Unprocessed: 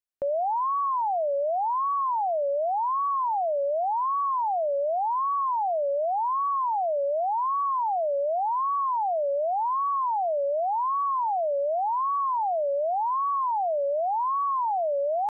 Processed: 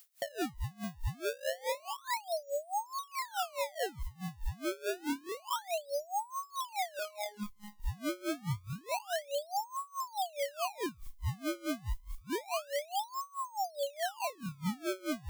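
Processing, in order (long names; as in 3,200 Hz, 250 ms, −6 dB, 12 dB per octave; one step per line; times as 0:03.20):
elliptic band-pass filter 120–980 Hz
sample-and-hold swept by an LFO 27×, swing 160% 0.28 Hz
background noise blue −52 dBFS
0:06.99–0:07.80: phases set to zero 208 Hz
tremolo with a sine in dB 4.7 Hz, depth 25 dB
level −4 dB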